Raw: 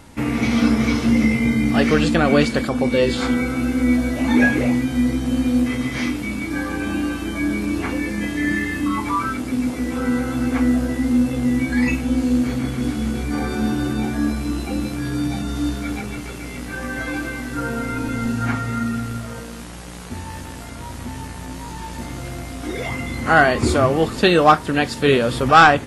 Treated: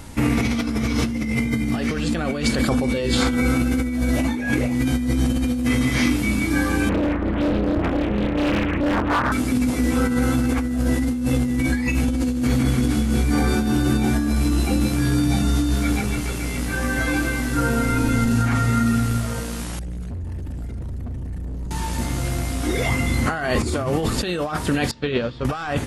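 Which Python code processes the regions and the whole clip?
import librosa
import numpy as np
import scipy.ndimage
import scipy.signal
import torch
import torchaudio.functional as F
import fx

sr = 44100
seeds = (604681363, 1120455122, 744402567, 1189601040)

y = fx.chain(x, sr, fx.lowpass(hz=1600.0, slope=24),
    fx.clip_hard(threshold_db=-19.0),
    fx.doppler_dist(depth_ms=0.88), at=(6.89, 9.32))
y = fx.chain(y, sr, fx.envelope_sharpen(power=2.0),
    fx.peak_eq(hz=970.0, db=-15.0, octaves=0.63),
    fx.overload_stage(gain_db=34.5), at=(19.79, 21.71))
y = fx.chain(y, sr, fx.lowpass(hz=4900.0, slope=24),
    fx.upward_expand(threshold_db=-25.0, expansion=2.5), at=(24.91, 25.45))
y = fx.low_shelf(y, sr, hz=120.0, db=8.0)
y = fx.over_compress(y, sr, threshold_db=-20.0, ratio=-1.0)
y = fx.high_shelf(y, sr, hz=4900.0, db=6.0)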